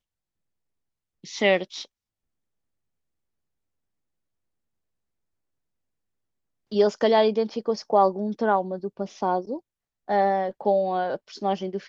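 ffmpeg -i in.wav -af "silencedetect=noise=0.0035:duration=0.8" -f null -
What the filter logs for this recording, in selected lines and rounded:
silence_start: 0.00
silence_end: 1.24 | silence_duration: 1.24
silence_start: 1.86
silence_end: 6.71 | silence_duration: 4.86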